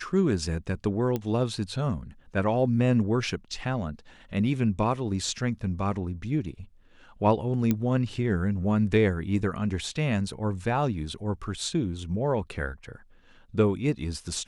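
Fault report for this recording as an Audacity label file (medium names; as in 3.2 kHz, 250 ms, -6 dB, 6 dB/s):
1.160000	1.160000	pop -16 dBFS
7.710000	7.710000	pop -12 dBFS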